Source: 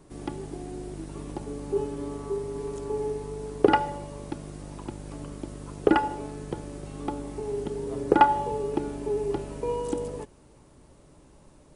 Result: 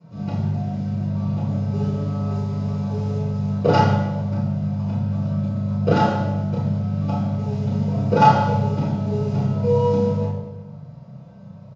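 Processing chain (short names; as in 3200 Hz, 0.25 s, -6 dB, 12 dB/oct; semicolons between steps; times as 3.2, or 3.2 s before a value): median filter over 15 samples; speaker cabinet 130–6100 Hz, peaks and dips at 180 Hz -6 dB, 260 Hz -8 dB, 400 Hz -8 dB, 790 Hz -4 dB; doubler 31 ms -3.5 dB; reverb RT60 1.0 s, pre-delay 3 ms, DRR -14.5 dB; gain -8.5 dB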